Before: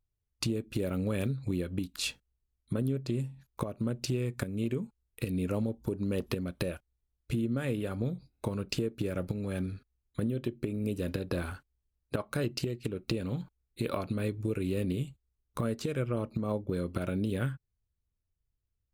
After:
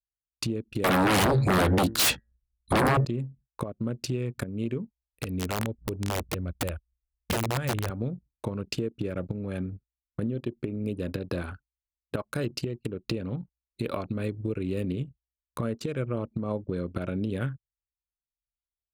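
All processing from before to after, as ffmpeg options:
-filter_complex "[0:a]asettb=1/sr,asplit=3[a][b][c];[a]atrim=end=0.844[d];[b]atrim=start=0.84:end=3.05,asetpts=PTS-STARTPTS,afade=t=in:d=0.004:c=qsin,afade=t=out:st=2.206:d=0.004:c=qsin,bandreject=f=112.2:t=h:w=4,bandreject=f=224.4:t=h:w=4,bandreject=f=336.6:t=h:w=4,bandreject=f=448.8:t=h:w=4,bandreject=f=561:t=h:w=4,bandreject=f=673.2:t=h:w=4,bandreject=f=785.4:t=h:w=4,bandreject=f=897.6:t=h:w=4,bandreject=f=1.0098k:t=h:w=4,bandreject=f=1.122k:t=h:w=4,bandreject=f=1.2342k:t=h:w=4,bandreject=f=1.3464k:t=h:w=4,bandreject=f=1.4586k:t=h:w=4,bandreject=f=1.5708k:t=h:w=4,bandreject=f=1.683k:t=h:w=4,bandreject=f=1.7952k:t=h:w=4,bandreject=f=1.9074k:t=h:w=4,aeval=exprs='0.1*sin(PI/2*6.31*val(0)/0.1)':c=same[e];[c]atrim=start=3.046[f];[d][e]acrossfade=d=0.004:c1=hsin:c2=qsin[g];[g][f]acrossfade=d=0.004:c1=qsin:c2=hsin,asettb=1/sr,asplit=3[h][i][j];[h]atrim=end=4.774[k];[i]atrim=start=4.77:end=7.9,asetpts=PTS-STARTPTS,afade=t=in:d=0.004:c=qsin,afade=t=out:st=3.126:d=0.004:c=qsin,asubboost=boost=11.5:cutoff=81,aeval=exprs='(mod(14.1*val(0)+1,2)-1)/14.1':c=same[l];[j]atrim=start=7.896[m];[k][l]acrossfade=d=0.004:c1=hsin:c2=qsin[n];[n][m]acrossfade=d=0.004:c1=qsin:c2=hsin,agate=range=-7dB:threshold=-56dB:ratio=16:detection=peak,anlmdn=0.251,highpass=54,volume=1.5dB"

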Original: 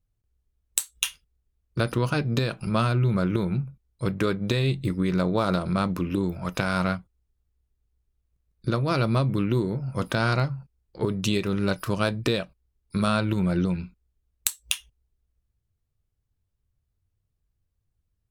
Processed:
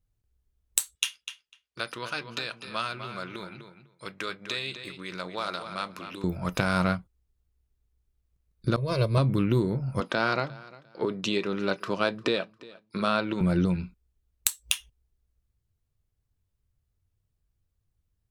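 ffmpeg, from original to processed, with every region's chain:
-filter_complex "[0:a]asettb=1/sr,asplit=3[a][b][c];[a]atrim=end=0.954[d];[b]atrim=start=0.95:end=6.24,asetpts=PTS-STARTPTS,afade=t=in:d=0.004:c=qsin,afade=t=out:st=5.286:d=0.004:c=qsin,bandpass=f=3.4k:t=q:w=0.53,asplit=2[e][f];[f]adelay=250,lowpass=f=4.4k:p=1,volume=-9dB,asplit=2[g][h];[h]adelay=250,lowpass=f=4.4k:p=1,volume=0.15[i];[e][g][i]amix=inputs=3:normalize=0,atrim=end_sample=233289[j];[c]atrim=start=6.236[k];[d][j]acrossfade=d=0.004:c1=hsin:c2=qsin[l];[l][k]acrossfade=d=0.004:c1=qsin:c2=hsin,asettb=1/sr,asplit=3[m][n][o];[m]atrim=end=8.764[p];[n]atrim=start=8.76:end=9.18,asetpts=PTS-STARTPTS,afade=t=in:d=0.004:c=qsin,afade=t=out:st=0.416:d=0.004:c=qsin,agate=range=-33dB:threshold=-20dB:ratio=3:release=100:detection=peak,equalizer=f=1.4k:t=o:w=1.1:g=-7,aecho=1:1:1.9:0.86,atrim=end_sample=18522[q];[o]atrim=start=9.176[r];[p][q]acrossfade=d=0.004:c1=hsin:c2=qsin[s];[s][r]acrossfade=d=0.004:c1=qsin:c2=hsin,asettb=1/sr,asplit=3[t][u][v];[t]atrim=end=10.004[w];[u]atrim=start=10:end=13.41,asetpts=PTS-STARTPTS,afade=t=in:d=0.004:c=qsin,afade=t=out:st=3.406:d=0.004:c=qsin,highpass=270,lowpass=5k,aecho=1:1:351|702:0.0891|0.0223,atrim=end_sample=150381[x];[v]atrim=start=13.406[y];[w][x]acrossfade=d=0.004:c1=hsin:c2=qsin[z];[z][y]acrossfade=d=0.004:c1=qsin:c2=hsin"

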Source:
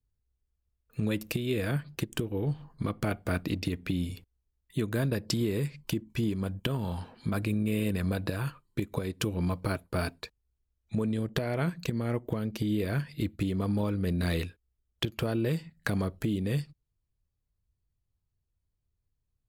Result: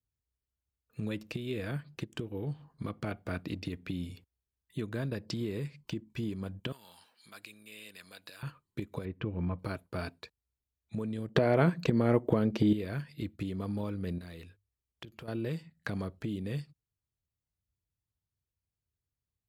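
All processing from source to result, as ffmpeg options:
-filter_complex "[0:a]asettb=1/sr,asplit=3[a][b][c];[a]atrim=end=6.724[d];[b]atrim=start=6.72:end=8.43,asetpts=PTS-STARTPTS,afade=t=in:d=0.004:c=qsin,afade=t=out:st=1.706:d=0.004:c=qsin,acontrast=82,aderivative[e];[c]atrim=start=8.426[f];[d][e]acrossfade=d=0.004:c1=hsin:c2=qsin[g];[g][f]acrossfade=d=0.004:c1=qsin:c2=hsin,asettb=1/sr,asplit=3[h][i][j];[h]atrim=end=9.054[k];[i]atrim=start=9.05:end=9.59,asetpts=PTS-STARTPTS,afade=t=in:d=0.004:c=qsin,afade=t=out:st=0.536:d=0.004:c=qsin,lowpass=f=2.5k:w=0.5412,lowpass=f=2.5k:w=1.3066,lowshelf=f=150:g=5.5[l];[j]atrim=start=9.586[m];[k][l]acrossfade=d=0.004:c1=hsin:c2=qsin[n];[n][m]acrossfade=d=0.004:c1=qsin:c2=hsin,asettb=1/sr,asplit=3[o][p][q];[o]atrim=end=11.354[r];[p]atrim=start=11.35:end=12.73,asetpts=PTS-STARTPTS,afade=t=in:d=0.004:c=qsin,afade=t=out:st=1.376:d=0.004:c=qsin,equalizer=f=500:w=0.32:g=8,acontrast=27[s];[q]atrim=start=12.726[t];[r][s]acrossfade=d=0.004:c1=hsin:c2=qsin[u];[u][t]acrossfade=d=0.004:c1=qsin:c2=hsin,asettb=1/sr,asplit=3[v][w][x];[v]atrim=end=14.184[y];[w]atrim=start=14.18:end=15.28,asetpts=PTS-STARTPTS,afade=t=in:d=0.004:c=qsin,afade=t=out:st=1.096:d=0.004:c=qsin,bandreject=f=50:t=h:w=6,bandreject=f=100:t=h:w=6,acompressor=threshold=-40dB:ratio=3:attack=3.2:release=140:knee=1:detection=peak[z];[x]atrim=start=15.276[aa];[y][z]acrossfade=d=0.004:c1=hsin:c2=qsin[ab];[ab][aa]acrossfade=d=0.004:c1=qsin:c2=hsin,highpass=67,acrossover=split=6300[ac][ad];[ad]acompressor=threshold=-56dB:ratio=4:attack=1:release=60[ae];[ac][ae]amix=inputs=2:normalize=0,volume=-6dB"

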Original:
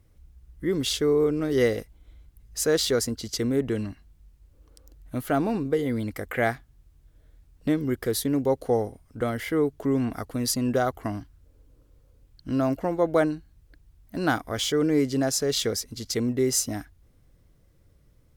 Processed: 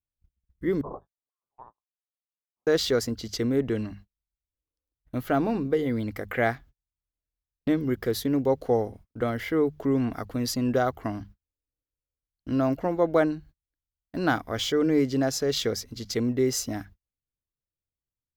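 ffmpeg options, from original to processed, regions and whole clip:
-filter_complex "[0:a]asettb=1/sr,asplit=3[a][b][c];[a]atrim=end=0.814[d];[b]atrim=start=0.81:end=2.67,asetpts=PTS-STARTPTS,afade=t=in:d=0.004:c=qsin,afade=t=out:st=1.856:d=0.004:c=qsin,lowpass=f=3.2k:t=q:w=0.5098,lowpass=f=3.2k:t=q:w=0.6013,lowpass=f=3.2k:t=q:w=0.9,lowpass=f=3.2k:t=q:w=2.563,afreqshift=-3800,asuperstop=centerf=2700:order=12:qfactor=0.57,highshelf=f=2.1k:g=-10.5[e];[c]atrim=start=2.666[f];[d][e]acrossfade=d=0.004:c1=hsin:c2=qsin[g];[g][f]acrossfade=d=0.004:c1=qsin:c2=hsin,bandreject=f=50:t=h:w=6,bandreject=f=100:t=h:w=6,bandreject=f=150:t=h:w=6,bandreject=f=200:t=h:w=6,agate=range=-36dB:threshold=-46dB:ratio=16:detection=peak,equalizer=f=9.5k:t=o:w=0.88:g=-11"

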